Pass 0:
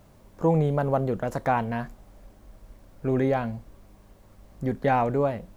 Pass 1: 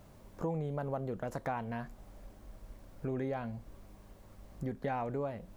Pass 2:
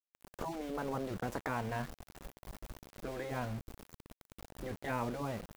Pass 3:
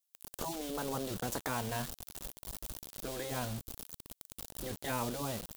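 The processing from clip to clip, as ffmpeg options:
ffmpeg -i in.wav -af "acompressor=threshold=-36dB:ratio=2.5,volume=-2dB" out.wav
ffmpeg -i in.wav -af "aeval=exprs='val(0)*gte(abs(val(0)),0.00473)':channel_layout=same,afftfilt=real='re*lt(hypot(re,im),0.0891)':imag='im*lt(hypot(re,im),0.0891)':win_size=1024:overlap=0.75,volume=3.5dB" out.wav
ffmpeg -i in.wav -af "aexciter=amount=2.4:drive=7.9:freq=3000" out.wav

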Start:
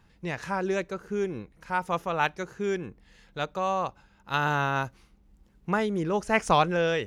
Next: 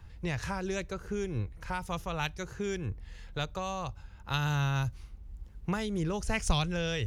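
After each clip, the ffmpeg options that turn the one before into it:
ffmpeg -i in.wav -filter_complex "[0:a]lowshelf=frequency=130:width_type=q:width=1.5:gain=11,acrossover=split=190|3000[link_01][link_02][link_03];[link_02]acompressor=threshold=-38dB:ratio=4[link_04];[link_01][link_04][link_03]amix=inputs=3:normalize=0,volume=2.5dB" out.wav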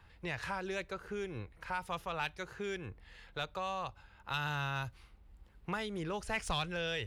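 ffmpeg -i in.wav -filter_complex "[0:a]asplit=2[link_01][link_02];[link_02]highpass=frequency=720:poles=1,volume=14dB,asoftclip=type=tanh:threshold=-13dB[link_03];[link_01][link_03]amix=inputs=2:normalize=0,lowpass=frequency=5300:poles=1,volume=-6dB,equalizer=frequency=6200:width_type=o:width=0.54:gain=-8.5,volume=-8dB" out.wav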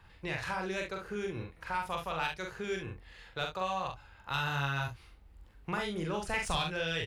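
ffmpeg -i in.wav -af "aecho=1:1:43|68:0.668|0.316,volume=1.5dB" out.wav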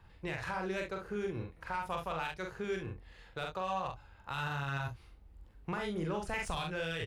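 ffmpeg -i in.wav -filter_complex "[0:a]asplit=2[link_01][link_02];[link_02]adynamicsmooth=sensitivity=6:basefreq=1200,volume=-1.5dB[link_03];[link_01][link_03]amix=inputs=2:normalize=0,alimiter=limit=-21dB:level=0:latency=1:release=52,volume=-5dB" out.wav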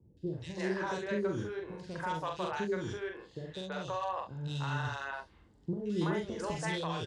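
ffmpeg -i in.wav -filter_complex "[0:a]highpass=130,equalizer=frequency=340:width_type=q:width=4:gain=3,equalizer=frequency=760:width_type=q:width=4:gain=-6,equalizer=frequency=1300:width_type=q:width=4:gain=-8,equalizer=frequency=2400:width_type=q:width=4:gain=-10,lowpass=frequency=8100:width=0.5412,lowpass=frequency=8100:width=1.3066,acrossover=split=460|2900[link_01][link_02][link_03];[link_03]adelay=170[link_04];[link_02]adelay=330[link_05];[link_01][link_05][link_04]amix=inputs=3:normalize=0,volume=5.5dB" out.wav

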